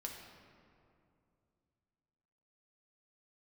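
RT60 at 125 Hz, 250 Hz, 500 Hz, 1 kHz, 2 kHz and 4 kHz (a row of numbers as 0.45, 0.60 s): 3.3, 3.0, 2.7, 2.4, 1.9, 1.3 s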